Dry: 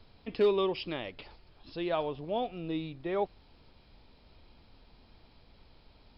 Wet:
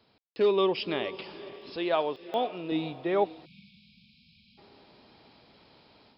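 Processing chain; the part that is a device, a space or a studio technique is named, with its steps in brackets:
call with lost packets (high-pass filter 170 Hz 12 dB per octave; downsampling to 16,000 Hz; automatic gain control gain up to 8.5 dB; dropped packets of 60 ms bursts)
0:01.76–0:02.72: high-pass filter 300 Hz 6 dB per octave
feedback delay with all-pass diffusion 469 ms, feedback 42%, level −15 dB
0:03.45–0:04.58: time-frequency box erased 250–2,200 Hz
level −3 dB

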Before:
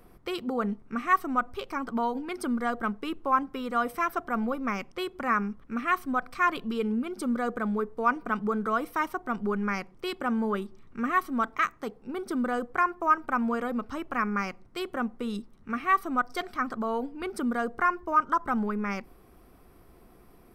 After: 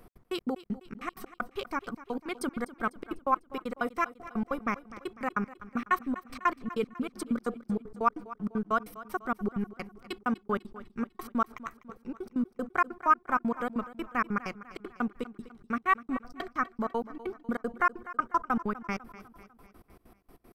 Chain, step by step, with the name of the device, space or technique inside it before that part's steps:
trance gate with a delay (gate pattern "x.x.x.x.." 193 BPM −60 dB; repeating echo 249 ms, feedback 52%, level −16.5 dB)

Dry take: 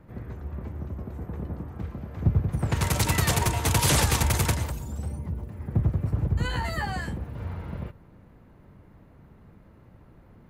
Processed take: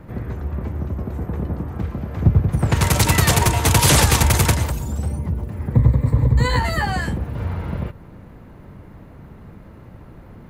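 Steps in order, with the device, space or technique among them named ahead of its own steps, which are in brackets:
parallel compression (in parallel at −4 dB: downward compressor, threshold −38 dBFS, peak gain reduction 20 dB)
0:05.74–0:06.59: on the sum: EQ curve with evenly spaced ripples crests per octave 1, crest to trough 11 dB
level +7 dB

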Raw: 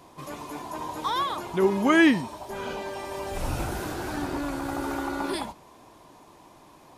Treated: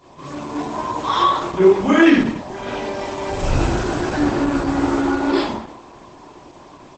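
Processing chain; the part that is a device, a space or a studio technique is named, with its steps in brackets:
speakerphone in a meeting room (convolution reverb RT60 0.60 s, pre-delay 21 ms, DRR −6 dB; far-end echo of a speakerphone 210 ms, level −16 dB; automatic gain control gain up to 4 dB; Opus 12 kbit/s 48,000 Hz)

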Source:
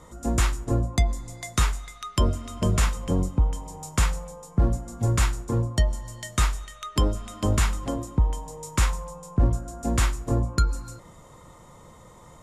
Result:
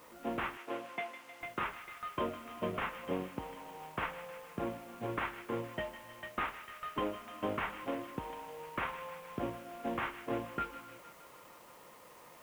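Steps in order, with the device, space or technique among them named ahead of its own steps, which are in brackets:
army field radio (band-pass filter 330–3,300 Hz; variable-slope delta modulation 16 kbit/s; white noise bed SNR 23 dB)
0:00.57–0:01.41: meter weighting curve A
delay with a high-pass on its return 155 ms, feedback 67%, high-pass 1,600 Hz, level −10 dB
level −4.5 dB

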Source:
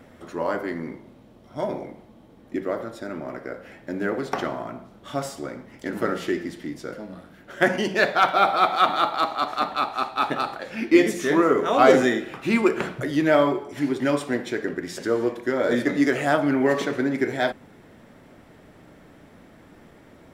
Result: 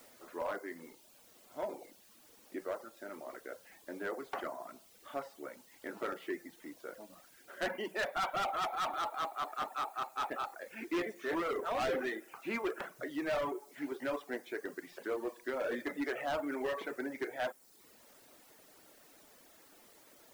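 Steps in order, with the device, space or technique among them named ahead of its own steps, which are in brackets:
aircraft radio (band-pass filter 390–2,400 Hz; hard clipping −21 dBFS, distortion −7 dB; white noise bed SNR 22 dB)
reverb reduction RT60 0.75 s
level −9 dB

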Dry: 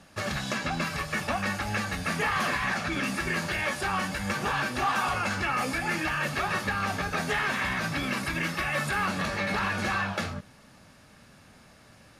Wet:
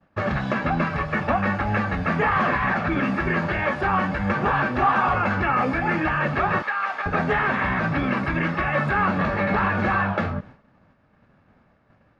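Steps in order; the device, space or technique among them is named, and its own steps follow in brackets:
0:06.62–0:07.06: high-pass filter 980 Hz 12 dB per octave
hearing-loss simulation (low-pass filter 1,600 Hz 12 dB per octave; downward expander −46 dBFS)
level +8.5 dB

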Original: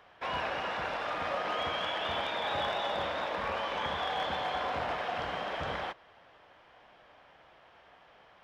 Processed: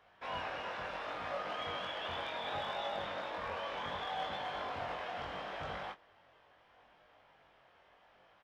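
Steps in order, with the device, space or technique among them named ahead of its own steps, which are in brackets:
double-tracked vocal (double-tracking delay 21 ms −10.5 dB; chorus effect 0.7 Hz, delay 19.5 ms, depth 3.5 ms)
level −4 dB

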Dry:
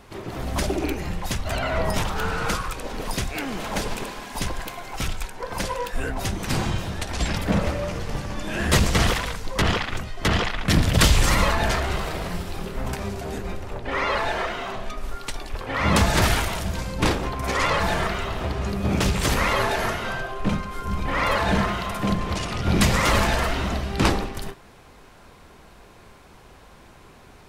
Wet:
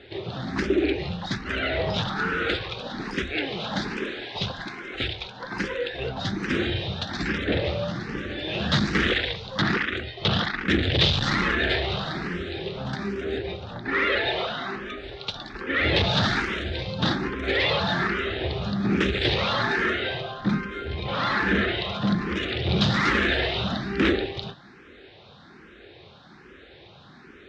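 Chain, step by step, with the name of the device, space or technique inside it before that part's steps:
barber-pole phaser into a guitar amplifier (frequency shifter mixed with the dry sound +1.2 Hz; soft clipping −18.5 dBFS, distortion −14 dB; loudspeaker in its box 96–4,400 Hz, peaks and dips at 360 Hz +5 dB, 670 Hz −4 dB, 1,000 Hz −9 dB, 1,700 Hz +4 dB, 3,700 Hz +8 dB)
level +4 dB

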